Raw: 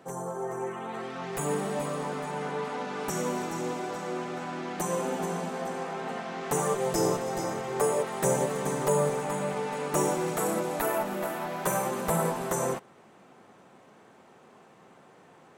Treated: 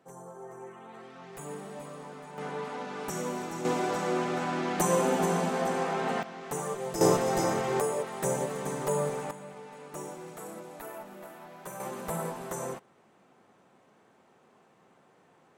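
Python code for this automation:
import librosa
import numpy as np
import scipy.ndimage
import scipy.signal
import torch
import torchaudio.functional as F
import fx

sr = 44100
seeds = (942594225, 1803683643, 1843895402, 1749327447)

y = fx.gain(x, sr, db=fx.steps((0.0, -11.0), (2.38, -3.5), (3.65, 4.5), (6.23, -6.5), (7.01, 4.0), (7.8, -4.0), (9.31, -14.0), (11.8, -7.0)))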